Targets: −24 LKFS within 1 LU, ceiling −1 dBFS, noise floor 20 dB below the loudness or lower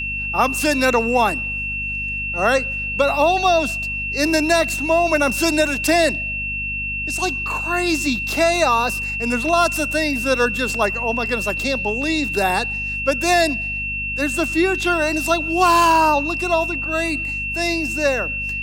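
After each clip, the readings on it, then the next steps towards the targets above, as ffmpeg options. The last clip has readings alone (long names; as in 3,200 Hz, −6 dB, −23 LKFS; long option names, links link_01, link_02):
mains hum 50 Hz; hum harmonics up to 250 Hz; level of the hum −30 dBFS; interfering tone 2,700 Hz; level of the tone −23 dBFS; integrated loudness −18.5 LKFS; sample peak −4.0 dBFS; target loudness −24.0 LKFS
→ -af "bandreject=frequency=50:width_type=h:width=4,bandreject=frequency=100:width_type=h:width=4,bandreject=frequency=150:width_type=h:width=4,bandreject=frequency=200:width_type=h:width=4,bandreject=frequency=250:width_type=h:width=4"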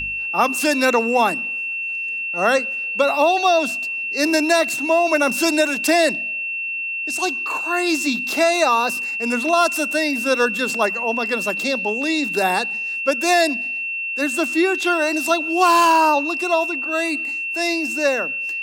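mains hum none found; interfering tone 2,700 Hz; level of the tone −23 dBFS
→ -af "bandreject=frequency=2700:width=30"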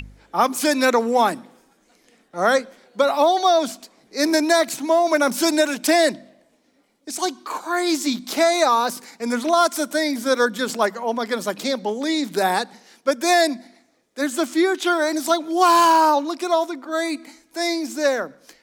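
interfering tone none found; integrated loudness −20.0 LKFS; sample peak −4.5 dBFS; target loudness −24.0 LKFS
→ -af "volume=-4dB"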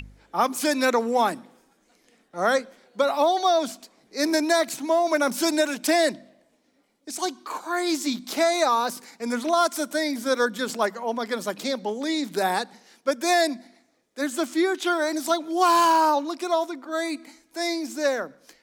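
integrated loudness −24.0 LKFS; sample peak −8.5 dBFS; background noise floor −66 dBFS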